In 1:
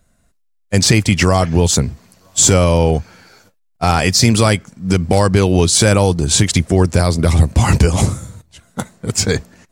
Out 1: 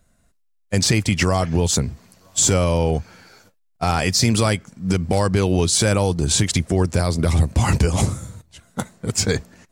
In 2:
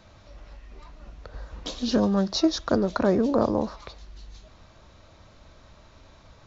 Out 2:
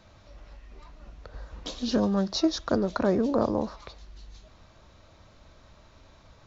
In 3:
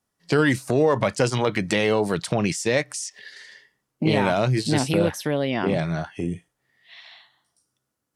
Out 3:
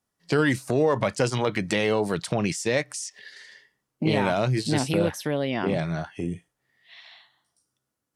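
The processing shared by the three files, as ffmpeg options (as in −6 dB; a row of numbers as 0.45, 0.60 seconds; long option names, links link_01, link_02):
-af "alimiter=limit=-5dB:level=0:latency=1:release=215,volume=-2.5dB"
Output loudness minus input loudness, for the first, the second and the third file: −5.5, −2.5, −2.5 LU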